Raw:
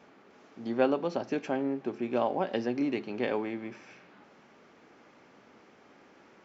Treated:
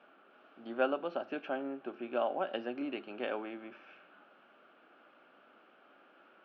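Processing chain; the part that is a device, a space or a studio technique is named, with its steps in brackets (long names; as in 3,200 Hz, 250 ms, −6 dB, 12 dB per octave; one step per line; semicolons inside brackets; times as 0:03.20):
phone earpiece (loudspeaker in its box 350–3,200 Hz, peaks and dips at 440 Hz −6 dB, 630 Hz +3 dB, 940 Hz −6 dB, 1,400 Hz +8 dB, 2,000 Hz −10 dB, 2,900 Hz +5 dB)
level −3 dB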